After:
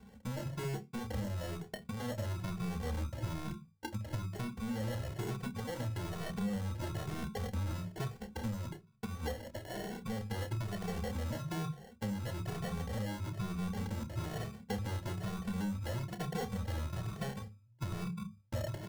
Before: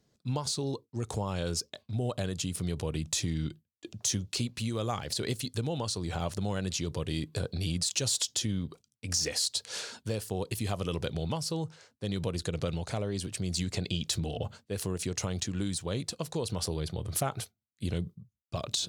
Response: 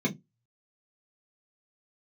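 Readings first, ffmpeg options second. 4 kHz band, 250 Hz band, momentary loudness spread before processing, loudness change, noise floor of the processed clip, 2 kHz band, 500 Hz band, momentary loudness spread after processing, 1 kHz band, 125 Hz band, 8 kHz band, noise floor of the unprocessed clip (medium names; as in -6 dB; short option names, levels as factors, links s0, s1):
-15.0 dB, -4.0 dB, 7 LU, -6.5 dB, -61 dBFS, -3.5 dB, -7.0 dB, 5 LU, -3.5 dB, -3.5 dB, -18.5 dB, -82 dBFS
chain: -filter_complex "[0:a]lowpass=1100,equalizer=f=65:w=1.1:g=6.5,bandreject=f=50:t=h:w=6,bandreject=f=100:t=h:w=6,acrusher=samples=36:mix=1:aa=0.000001,asplit=2[s0][s1];[s1]adelay=29,volume=0.282[s2];[s0][s2]amix=inputs=2:normalize=0,asoftclip=type=tanh:threshold=0.0168,asplit=2[s3][s4];[1:a]atrim=start_sample=2205[s5];[s4][s5]afir=irnorm=-1:irlink=0,volume=0.0891[s6];[s3][s6]amix=inputs=2:normalize=0,acompressor=threshold=0.00282:ratio=4,asplit=2[s7][s8];[s8]adelay=2.2,afreqshift=1.1[s9];[s7][s9]amix=inputs=2:normalize=1,volume=6.31"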